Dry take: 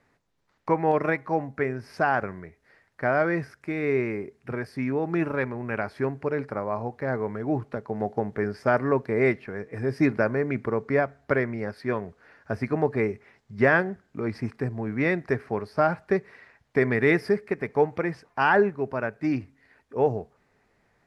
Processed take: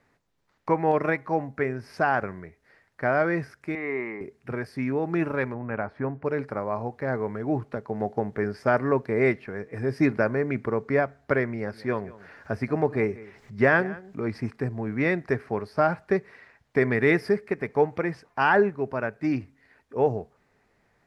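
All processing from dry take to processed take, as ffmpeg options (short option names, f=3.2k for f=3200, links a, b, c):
-filter_complex "[0:a]asettb=1/sr,asplit=3[a][b][c];[a]atrim=end=3.754[d];[b]atrim=start=3.75:end=4.21,asetpts=PTS-STARTPTS,afade=t=in:d=0.004:c=qsin,afade=t=out:st=0.456:d=0.004:c=qsin,highpass=370,lowpass=2.3k,aecho=1:1:1:0.56,atrim=end_sample=20286[e];[c]atrim=start=4.206[f];[d][e]acrossfade=d=0.004:c1=hsin:c2=qsin[g];[g][f]acrossfade=d=0.004:c1=qsin:c2=hsin,asettb=1/sr,asplit=3[h][i][j];[h]atrim=end=5.544[k];[i]atrim=start=5.54:end=6.25,asetpts=PTS-STARTPTS,afade=t=in:d=0.004:c=qsin,afade=t=out:st=0.706:d=0.004:c=qsin,lowpass=1.3k,aemphasis=mode=production:type=75kf,bandreject=f=380:w=6[l];[j]atrim=start=6.246[m];[k][l]acrossfade=d=0.004:c1=hsin:c2=qsin[n];[n][m]acrossfade=d=0.004:c1=qsin:c2=hsin,asettb=1/sr,asplit=3[o][p][q];[o]atrim=end=11.554[r];[p]atrim=start=11.55:end=14.32,asetpts=PTS-STARTPTS,afade=t=in:d=0.004:c=qsin,afade=t=out:st=2.766:d=0.004:c=qsin,aecho=1:1:184:0.106,atrim=end_sample=122157,acompressor=mode=upward:threshold=-39dB:ratio=2.5:attack=3.2:release=140:knee=2.83:detection=peak[s];[q]atrim=start=14.316[t];[r][s]acrossfade=d=0.004:c1=hsin:c2=qsin[u];[u][t]acrossfade=d=0.004:c1=qsin:c2=hsin"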